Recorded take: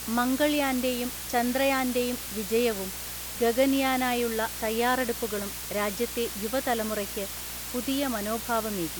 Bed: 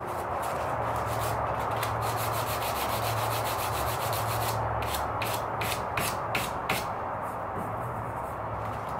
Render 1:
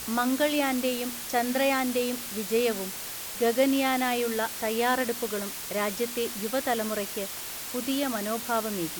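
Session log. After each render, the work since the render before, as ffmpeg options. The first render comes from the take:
-af "bandreject=f=60:t=h:w=4,bandreject=f=120:t=h:w=4,bandreject=f=180:t=h:w=4,bandreject=f=240:t=h:w=4,bandreject=f=300:t=h:w=4"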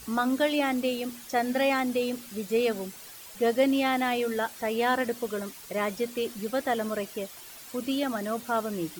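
-af "afftdn=nr=11:nf=-37"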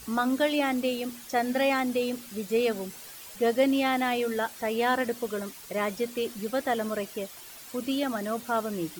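-filter_complex "[0:a]asettb=1/sr,asplit=3[a][b][c];[a]atrim=end=2.894[d];[b]atrim=start=2.89:end=3.36,asetpts=PTS-STARTPTS,afade=t=in:d=0.004:c=qsin,afade=t=out:st=0.466:d=0.004:c=qsin,asplit=2[e][f];[f]adelay=13,volume=-5.5dB[g];[e][g]amix=inputs=2:normalize=0,atrim=end_sample=20727[h];[c]atrim=start=3.356[i];[d][h]acrossfade=d=0.004:c1=hsin:c2=qsin[j];[j][i]acrossfade=d=0.004:c1=qsin:c2=hsin"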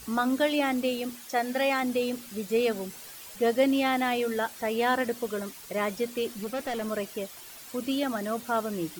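-filter_complex "[0:a]asettb=1/sr,asplit=3[a][b][c];[a]atrim=end=1.154[d];[b]atrim=start=1.15:end=1.83,asetpts=PTS-STARTPTS,afade=t=in:d=0.004:c=qsin,afade=t=out:st=0.676:d=0.004:c=qsin,lowshelf=f=190:g=-10.5[e];[c]atrim=start=1.826[f];[d][e]acrossfade=d=0.004:c1=hsin:c2=qsin[g];[g][f]acrossfade=d=0.004:c1=qsin:c2=hsin,asettb=1/sr,asplit=3[h][i][j];[h]atrim=end=6.414[k];[i]atrim=start=6.41:end=6.88,asetpts=PTS-STARTPTS,afade=t=in:d=0.004:c=qsin,afade=t=out:st=0.466:d=0.004:c=qsin,asoftclip=type=hard:threshold=-28.5dB[l];[j]atrim=start=6.876[m];[k][l]acrossfade=d=0.004:c1=hsin:c2=qsin[n];[n][m]acrossfade=d=0.004:c1=qsin:c2=hsin"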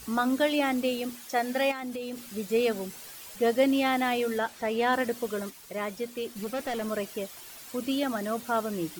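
-filter_complex "[0:a]asettb=1/sr,asplit=3[a][b][c];[a]atrim=end=1.714[d];[b]atrim=start=1.71:end=2.35,asetpts=PTS-STARTPTS,afade=t=in:d=0.004:c=qsin,afade=t=out:st=0.636:d=0.004:c=qsin,acompressor=threshold=-32dB:ratio=6:attack=3.2:release=140:knee=1:detection=peak[e];[c]atrim=start=2.346[f];[d][e]acrossfade=d=0.004:c1=hsin:c2=qsin[g];[g][f]acrossfade=d=0.004:c1=qsin:c2=hsin,asettb=1/sr,asplit=3[h][i][j];[h]atrim=end=4.384[k];[i]atrim=start=4.38:end=4.93,asetpts=PTS-STARTPTS,afade=t=in:d=0.004:c=qsin,afade=t=out:st=0.546:d=0.004:c=qsin,equalizer=f=16k:t=o:w=1.2:g=-8.5[l];[j]atrim=start=4.926[m];[k][l]acrossfade=d=0.004:c1=hsin:c2=qsin[n];[n][m]acrossfade=d=0.004:c1=qsin:c2=hsin,asplit=3[o][p][q];[o]atrim=end=5.502[r];[p]atrim=start=5.498:end=6.362,asetpts=PTS-STARTPTS,volume=-4dB[s];[q]atrim=start=6.358[t];[r][s]acrossfade=d=0.004:c1=hsin:c2=hsin[u];[u][t]acrossfade=d=0.004:c1=hsin:c2=hsin"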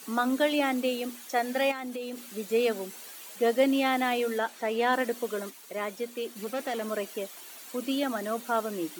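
-af "highpass=f=220:w=0.5412,highpass=f=220:w=1.3066,bandreject=f=5.1k:w=14"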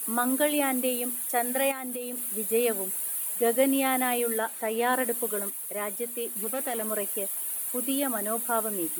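-af "highshelf=f=7.8k:t=q:w=3:g=12"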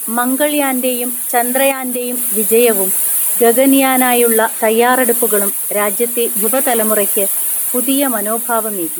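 -af "dynaudnorm=f=400:g=9:m=6.5dB,alimiter=level_in=11dB:limit=-1dB:release=50:level=0:latency=1"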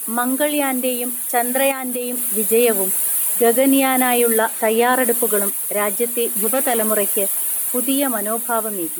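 -af "volume=-4.5dB"

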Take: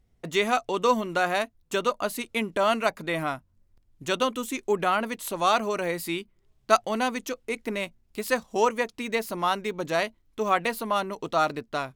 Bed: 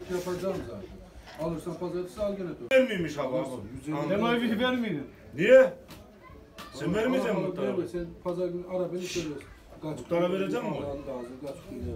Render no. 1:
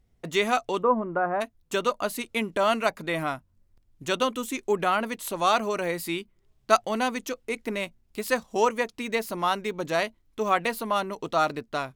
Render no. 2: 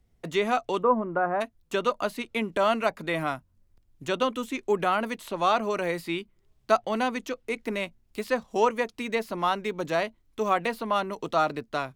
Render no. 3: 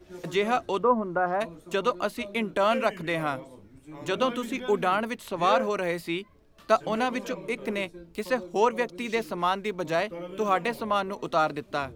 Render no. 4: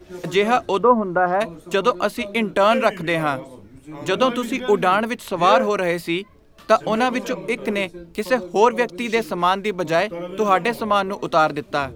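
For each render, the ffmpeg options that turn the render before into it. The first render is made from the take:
-filter_complex "[0:a]asplit=3[a][b][c];[a]afade=t=out:st=0.81:d=0.02[d];[b]lowpass=f=1.4k:w=0.5412,lowpass=f=1.4k:w=1.3066,afade=t=in:st=0.81:d=0.02,afade=t=out:st=1.4:d=0.02[e];[c]afade=t=in:st=1.4:d=0.02[f];[d][e][f]amix=inputs=3:normalize=0"
-filter_complex "[0:a]acrossover=split=140|1100|4600[a][b][c][d];[c]alimiter=limit=-20.5dB:level=0:latency=1:release=123[e];[d]acompressor=threshold=-50dB:ratio=6[f];[a][b][e][f]amix=inputs=4:normalize=0"
-filter_complex "[1:a]volume=-11.5dB[a];[0:a][a]amix=inputs=2:normalize=0"
-af "volume=7.5dB,alimiter=limit=-2dB:level=0:latency=1"

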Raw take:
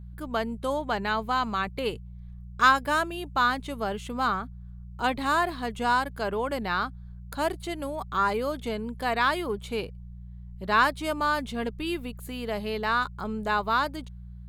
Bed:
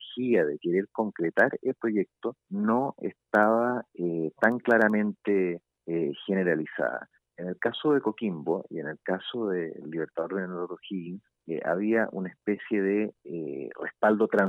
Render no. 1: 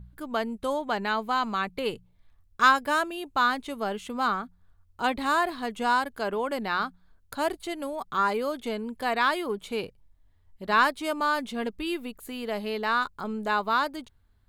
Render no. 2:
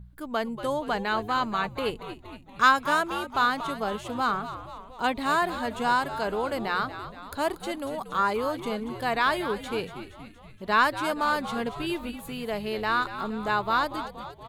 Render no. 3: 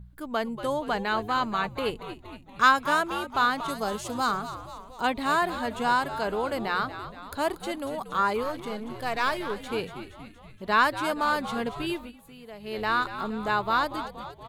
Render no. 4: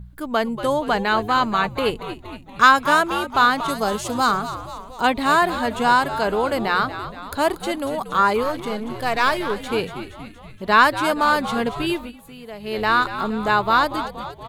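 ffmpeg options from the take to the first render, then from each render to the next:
-af "bandreject=f=60:t=h:w=4,bandreject=f=120:t=h:w=4,bandreject=f=180:t=h:w=4"
-filter_complex "[0:a]asplit=8[a][b][c][d][e][f][g][h];[b]adelay=235,afreqshift=-92,volume=-11.5dB[i];[c]adelay=470,afreqshift=-184,volume=-16.2dB[j];[d]adelay=705,afreqshift=-276,volume=-21dB[k];[e]adelay=940,afreqshift=-368,volume=-25.7dB[l];[f]adelay=1175,afreqshift=-460,volume=-30.4dB[m];[g]adelay=1410,afreqshift=-552,volume=-35.2dB[n];[h]adelay=1645,afreqshift=-644,volume=-39.9dB[o];[a][i][j][k][l][m][n][o]amix=inputs=8:normalize=0"
-filter_complex "[0:a]asettb=1/sr,asplit=3[a][b][c];[a]atrim=end=3.684[d];[b]atrim=start=3.68:end=5.01,asetpts=PTS-STARTPTS,afade=t=in:d=0.004:c=qsin,afade=t=out:st=1.326:d=0.004:c=qsin,highshelf=f=4k:t=q:w=1.5:g=7.5[e];[c]atrim=start=5.006[f];[d][e]acrossfade=d=0.004:c1=hsin:c2=qsin[g];[g][f]acrossfade=d=0.004:c1=qsin:c2=hsin,asettb=1/sr,asplit=3[h][i][j];[h]atrim=end=8.434[k];[i]atrim=start=8.43:end=9.7,asetpts=PTS-STARTPTS,afade=t=in:d=0.004:c=qsin,afade=t=out:st=1.266:d=0.004:c=qsin,aeval=exprs='if(lt(val(0),0),0.447*val(0),val(0))':c=same[l];[j]atrim=start=9.696[m];[k][l]acrossfade=d=0.004:c1=hsin:c2=qsin[n];[n][m]acrossfade=d=0.004:c1=qsin:c2=hsin,asplit=3[o][p][q];[o]atrim=end=12.13,asetpts=PTS-STARTPTS,afade=t=out:st=11.9:d=0.23:silence=0.237137[r];[p]atrim=start=12.13:end=12.59,asetpts=PTS-STARTPTS,volume=-12.5dB[s];[q]atrim=start=12.59,asetpts=PTS-STARTPTS,afade=t=in:d=0.23:silence=0.237137[t];[r][s][t]concat=n=3:v=0:a=1"
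-af "volume=7.5dB,alimiter=limit=-2dB:level=0:latency=1"

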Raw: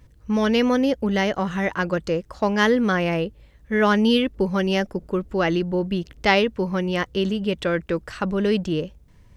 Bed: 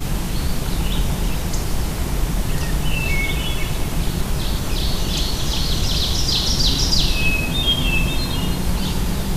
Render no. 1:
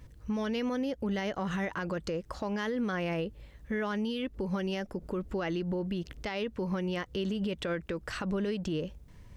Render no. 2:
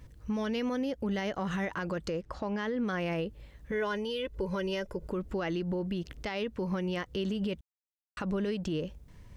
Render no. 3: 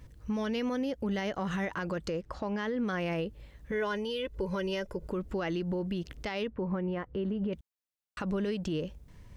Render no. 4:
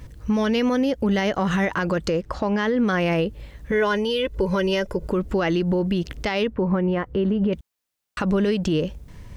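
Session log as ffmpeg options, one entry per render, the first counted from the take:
-af "acompressor=threshold=-25dB:ratio=6,alimiter=level_in=1dB:limit=-24dB:level=0:latency=1:release=95,volume=-1dB"
-filter_complex "[0:a]asettb=1/sr,asplit=3[a][b][c];[a]atrim=end=2.214[d];[b]atrim=start=2.21:end=2.88,asetpts=PTS-STARTPTS,afade=t=in:d=0.004:c=qsin,afade=t=out:st=0.666:d=0.004:c=qsin,aemphasis=mode=reproduction:type=50kf[e];[c]atrim=start=2.876[f];[d][e]acrossfade=d=0.004:c1=hsin:c2=qsin[g];[g][f]acrossfade=d=0.004:c1=qsin:c2=hsin,asettb=1/sr,asplit=3[h][i][j];[h]atrim=end=3.714[k];[i]atrim=start=3.71:end=5.08,asetpts=PTS-STARTPTS,afade=t=in:d=0.004:c=qsin,afade=t=out:st=1.366:d=0.004:c=qsin,aecho=1:1:2:0.65,atrim=end_sample=60417[l];[j]atrim=start=5.076[m];[k][l]acrossfade=d=0.004:c1=hsin:c2=qsin[n];[n][m]acrossfade=d=0.004:c1=qsin:c2=hsin,asplit=3[o][p][q];[o]atrim=end=7.61,asetpts=PTS-STARTPTS,afade=t=out:st=7.606:d=0.004:c=hsin[r];[p]atrim=start=7.61:end=8.17,asetpts=PTS-STARTPTS,volume=0[s];[q]atrim=start=8.17,asetpts=PTS-STARTPTS,afade=t=in:d=0.004:c=hsin[t];[r][s][t]concat=n=3:v=0:a=1"
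-filter_complex "[0:a]asettb=1/sr,asplit=3[a][b][c];[a]atrim=end=6.474[d];[b]atrim=start=6.47:end=7.53,asetpts=PTS-STARTPTS,afade=t=in:d=0.004:c=qsin,afade=t=out:st=1.056:d=0.004:c=qsin,lowpass=1.5k[e];[c]atrim=start=7.526[f];[d][e]acrossfade=d=0.004:c1=hsin:c2=qsin[g];[g][f]acrossfade=d=0.004:c1=qsin:c2=hsin"
-af "volume=11dB"

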